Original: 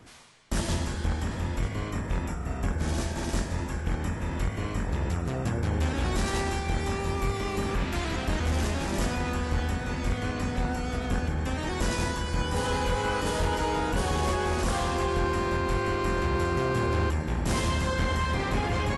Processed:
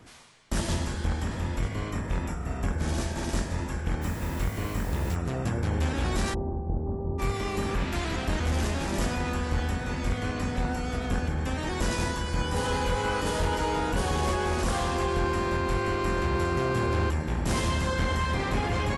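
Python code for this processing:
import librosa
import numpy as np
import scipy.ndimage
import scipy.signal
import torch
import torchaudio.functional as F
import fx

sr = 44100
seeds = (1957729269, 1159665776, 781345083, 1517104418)

y = fx.quant_dither(x, sr, seeds[0], bits=8, dither='triangular', at=(4.01, 5.14), fade=0.02)
y = fx.bessel_lowpass(y, sr, hz=530.0, order=6, at=(6.33, 7.18), fade=0.02)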